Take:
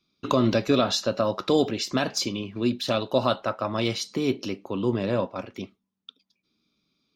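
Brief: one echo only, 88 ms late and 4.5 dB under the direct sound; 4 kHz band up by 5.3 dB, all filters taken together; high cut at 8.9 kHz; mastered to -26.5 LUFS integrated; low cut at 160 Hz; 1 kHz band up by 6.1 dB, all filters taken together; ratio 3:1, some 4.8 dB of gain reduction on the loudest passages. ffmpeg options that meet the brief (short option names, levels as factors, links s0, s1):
-af "highpass=160,lowpass=8900,equalizer=f=1000:t=o:g=7.5,equalizer=f=4000:t=o:g=6,acompressor=threshold=0.0794:ratio=3,aecho=1:1:88:0.596,volume=0.891"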